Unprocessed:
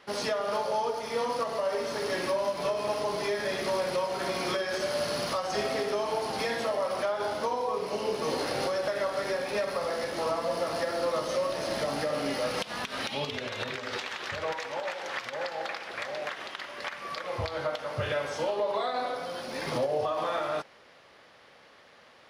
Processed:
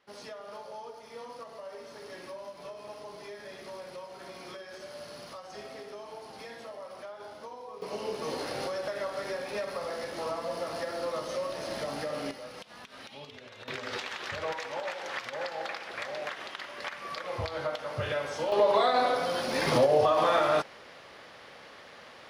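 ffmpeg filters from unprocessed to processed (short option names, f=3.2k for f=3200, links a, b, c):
-af "asetnsamples=n=441:p=0,asendcmd='7.82 volume volume -4.5dB;12.31 volume volume -13.5dB;13.68 volume volume -1.5dB;18.52 volume volume 6dB',volume=-14dB"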